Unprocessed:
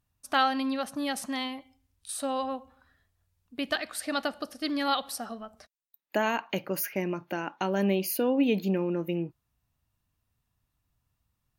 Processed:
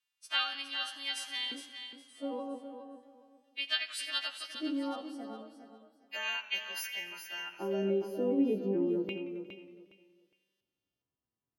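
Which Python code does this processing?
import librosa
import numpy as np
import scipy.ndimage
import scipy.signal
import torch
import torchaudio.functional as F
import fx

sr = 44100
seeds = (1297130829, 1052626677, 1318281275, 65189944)

p1 = fx.freq_snap(x, sr, grid_st=2)
p2 = fx.filter_lfo_bandpass(p1, sr, shape='square', hz=0.33, low_hz=350.0, high_hz=2900.0, q=2.1)
p3 = p2 + fx.echo_feedback(p2, sr, ms=412, feedback_pct=22, wet_db=-9.0, dry=0)
y = fx.echo_warbled(p3, sr, ms=89, feedback_pct=71, rate_hz=2.8, cents=69, wet_db=-18.0)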